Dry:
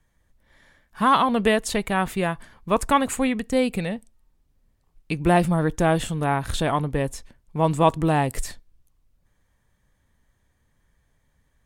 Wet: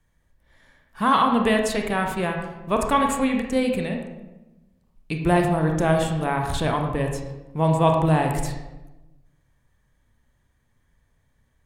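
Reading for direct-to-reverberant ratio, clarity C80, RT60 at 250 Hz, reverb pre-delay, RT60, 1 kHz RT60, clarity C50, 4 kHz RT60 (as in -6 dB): 2.5 dB, 7.0 dB, 1.4 s, 25 ms, 1.0 s, 0.95 s, 4.5 dB, 0.65 s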